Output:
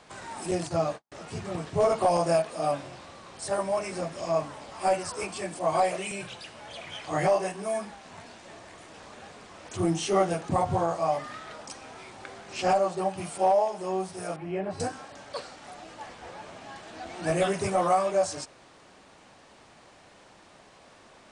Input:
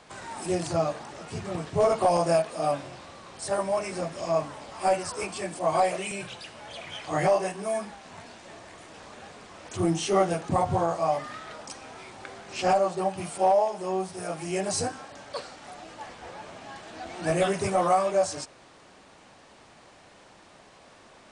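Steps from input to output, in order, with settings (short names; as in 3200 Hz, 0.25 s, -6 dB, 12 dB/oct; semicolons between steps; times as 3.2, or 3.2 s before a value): 0.51–1.12 gate -32 dBFS, range -53 dB; 14.36–14.8 air absorption 480 m; gain -1 dB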